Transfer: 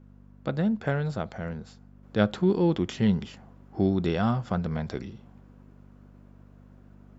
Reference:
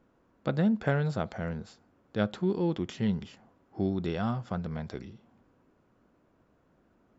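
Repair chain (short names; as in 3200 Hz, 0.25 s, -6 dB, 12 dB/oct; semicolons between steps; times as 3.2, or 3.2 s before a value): de-hum 49.1 Hz, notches 5; gain 0 dB, from 2.03 s -5.5 dB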